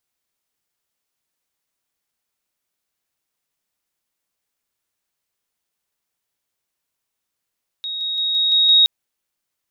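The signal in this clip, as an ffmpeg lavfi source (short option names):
-f lavfi -i "aevalsrc='pow(10,(-24+3*floor(t/0.17))/20)*sin(2*PI*3770*t)':d=1.02:s=44100"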